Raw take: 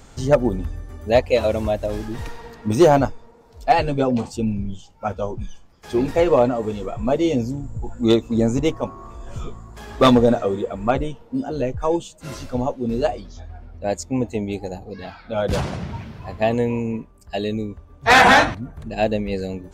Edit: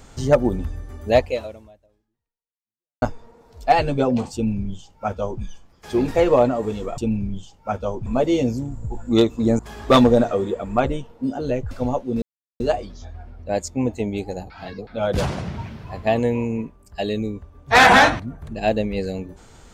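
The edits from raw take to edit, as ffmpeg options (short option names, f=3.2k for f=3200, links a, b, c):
-filter_complex "[0:a]asplit=9[a][b][c][d][e][f][g][h][i];[a]atrim=end=3.02,asetpts=PTS-STARTPTS,afade=t=out:st=1.22:d=1.8:c=exp[j];[b]atrim=start=3.02:end=6.982,asetpts=PTS-STARTPTS,afade=t=in:d=0.004:c=hsin[k];[c]atrim=start=4.338:end=5.422[l];[d]atrim=start=6.978:end=8.512[m];[e]atrim=start=9.698:end=11.822[n];[f]atrim=start=12.438:end=12.95,asetpts=PTS-STARTPTS,afade=t=out:st=0.508:d=0.004:c=hsin,apad=pad_dur=0.38[o];[g]atrim=start=12.95:end=14.852,asetpts=PTS-STARTPTS,afade=t=in:d=0.004:c=hsin[p];[h]atrim=start=14.848:end=15.222,asetpts=PTS-STARTPTS,areverse[q];[i]atrim=start=15.218[r];[j][k]concat=n=2:v=0:a=1[s];[s][l]acrossfade=d=0.004:c1=hsin:c2=hsin[t];[t][m]acrossfade=d=0.004:c1=hsin:c2=hsin[u];[u][n]acrossfade=d=0.004:c1=hsin:c2=hsin[v];[o][p]concat=n=2:v=0:a=1[w];[v][w]acrossfade=d=0.004:c1=hsin:c2=hsin[x];[x][q]acrossfade=d=0.004:c1=hsin:c2=hsin[y];[y][r]acrossfade=d=0.004:c1=hsin:c2=hsin"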